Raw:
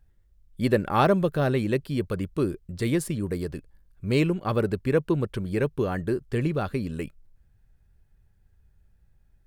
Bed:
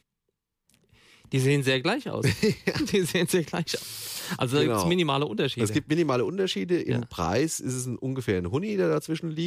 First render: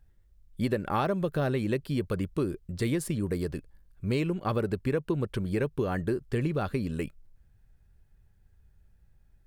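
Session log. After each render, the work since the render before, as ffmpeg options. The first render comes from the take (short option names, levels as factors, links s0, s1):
-af "acompressor=threshold=0.0631:ratio=6"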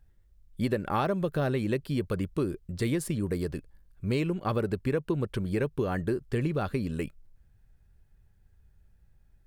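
-af anull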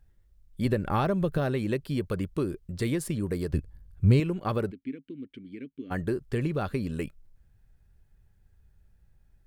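-filter_complex "[0:a]asettb=1/sr,asplit=3[s0][s1][s2];[s0]atrim=end=0.654[s3];[s1]atrim=start=0.65:end=1.38,asetpts=PTS-STARTPTS,afade=t=in:d=0.004:c=qsin,afade=t=out:st=0.726:d=0.004:c=qsin,lowshelf=f=130:g=10.5[s4];[s2]atrim=start=1.376[s5];[s3][s4]acrossfade=d=0.004:c1=hsin:c2=qsin[s6];[s6][s5]acrossfade=d=0.004:c1=qsin:c2=hsin,asettb=1/sr,asplit=3[s7][s8][s9];[s7]atrim=end=3.534[s10];[s8]atrim=start=3.53:end=4.2,asetpts=PTS-STARTPTS,afade=t=in:d=0.004:c=qsin,afade=t=out:st=0.666:d=0.004:c=qsin,equalizer=f=77:w=0.5:g=15[s11];[s9]atrim=start=4.196[s12];[s10][s11]acrossfade=d=0.004:c1=hsin:c2=qsin[s13];[s13][s12]acrossfade=d=0.004:c1=qsin:c2=hsin,asplit=3[s14][s15][s16];[s14]afade=t=out:st=4.7:d=0.02[s17];[s15]asplit=3[s18][s19][s20];[s18]bandpass=f=270:t=q:w=8,volume=1[s21];[s19]bandpass=f=2290:t=q:w=8,volume=0.501[s22];[s20]bandpass=f=3010:t=q:w=8,volume=0.355[s23];[s21][s22][s23]amix=inputs=3:normalize=0,afade=t=in:st=4.7:d=0.02,afade=t=out:st=5.9:d=0.02[s24];[s16]afade=t=in:st=5.9:d=0.02[s25];[s17][s24][s25]amix=inputs=3:normalize=0"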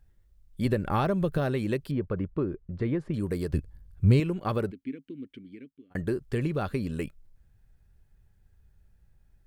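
-filter_complex "[0:a]asettb=1/sr,asplit=3[s0][s1][s2];[s0]atrim=end=1.914[s3];[s1]atrim=start=1.91:end=3.14,asetpts=PTS-STARTPTS,afade=t=in:d=0.004:c=qsin,afade=t=out:st=1.226:d=0.004:c=qsin,lowpass=1600[s4];[s2]atrim=start=3.136[s5];[s3][s4]acrossfade=d=0.004:c1=hsin:c2=qsin[s6];[s6][s5]acrossfade=d=0.004:c1=qsin:c2=hsin,asplit=2[s7][s8];[s7]atrim=end=5.95,asetpts=PTS-STARTPTS,afade=t=out:st=5.32:d=0.63[s9];[s8]atrim=start=5.95,asetpts=PTS-STARTPTS,afade=t=in:d=0.004:c=hsin[s10];[s9][s10]concat=n=2:v=0:a=1"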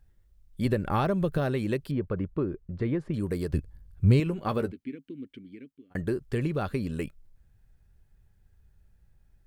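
-filter_complex "[0:a]asettb=1/sr,asplit=3[s0][s1][s2];[s0]atrim=end=4.254[s3];[s1]atrim=start=4.25:end=4.95,asetpts=PTS-STARTPTS,afade=t=in:d=0.004:c=qsin,afade=t=out:st=0.696:d=0.004:c=qsin,asplit=2[s4][s5];[s5]adelay=13,volume=0.355[s6];[s4][s6]amix=inputs=2:normalize=0,atrim=end_sample=30870[s7];[s2]atrim=start=4.946[s8];[s3][s7]acrossfade=d=0.004:c1=hsin:c2=qsin[s9];[s9][s8]acrossfade=d=0.004:c1=qsin:c2=hsin"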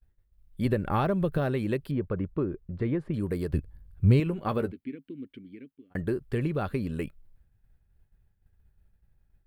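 -af "equalizer=f=6300:t=o:w=0.98:g=-8.5,agate=range=0.0224:threshold=0.002:ratio=3:detection=peak"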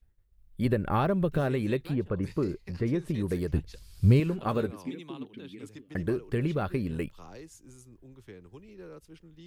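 -filter_complex "[1:a]volume=0.0794[s0];[0:a][s0]amix=inputs=2:normalize=0"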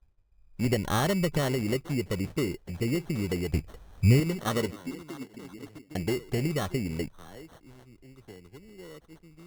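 -af "acrusher=samples=18:mix=1:aa=0.000001"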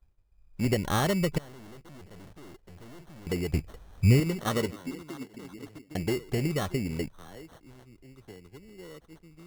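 -filter_complex "[0:a]asettb=1/sr,asplit=3[s0][s1][s2];[s0]atrim=end=1.384[s3];[s1]atrim=start=1.38:end=3.27,asetpts=PTS-STARTPTS,afade=t=in:d=0.004:c=qsin,afade=t=out:st=1.886:d=0.004:c=qsin,aeval=exprs='(tanh(224*val(0)+0.75)-tanh(0.75))/224':c=same[s4];[s2]atrim=start=3.266[s5];[s3][s4]acrossfade=d=0.004:c1=hsin:c2=qsin[s6];[s6][s5]acrossfade=d=0.004:c1=qsin:c2=hsin"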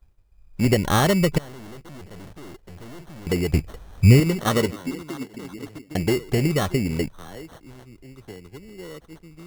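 -af "volume=2.37"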